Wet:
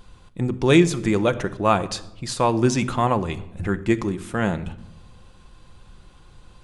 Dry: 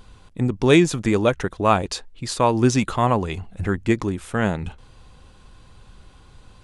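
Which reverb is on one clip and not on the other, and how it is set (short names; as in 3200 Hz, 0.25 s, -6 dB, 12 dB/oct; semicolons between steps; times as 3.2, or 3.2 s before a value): shoebox room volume 3400 m³, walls furnished, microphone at 0.85 m; gain -1.5 dB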